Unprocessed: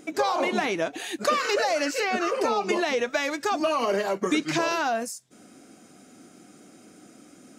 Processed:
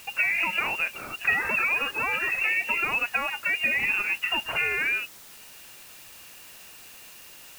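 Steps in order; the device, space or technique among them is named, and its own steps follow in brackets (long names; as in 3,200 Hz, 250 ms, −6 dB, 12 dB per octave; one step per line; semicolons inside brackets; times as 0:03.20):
scrambled radio voice (band-pass filter 350–3,100 Hz; voice inversion scrambler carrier 3,100 Hz; white noise bed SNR 19 dB)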